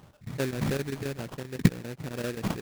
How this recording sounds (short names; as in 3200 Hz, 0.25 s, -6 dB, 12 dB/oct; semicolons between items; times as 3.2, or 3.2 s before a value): chopped level 7.6 Hz, depth 65%, duty 85%; phasing stages 2, 3.2 Hz, lowest notch 740–1500 Hz; aliases and images of a low sample rate 2100 Hz, jitter 20%